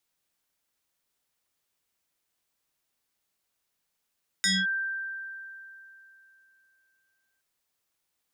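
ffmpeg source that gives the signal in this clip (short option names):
-f lavfi -i "aevalsrc='0.0944*pow(10,-3*t/3.12)*sin(2*PI*1570*t+3.9*clip(1-t/0.22,0,1)*sin(2*PI*1.12*1570*t))':d=2.97:s=44100"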